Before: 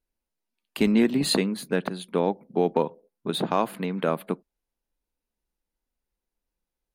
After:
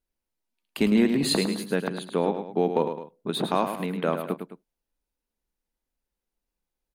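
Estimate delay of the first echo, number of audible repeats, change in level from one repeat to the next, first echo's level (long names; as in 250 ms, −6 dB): 106 ms, 2, −7.0 dB, −8.0 dB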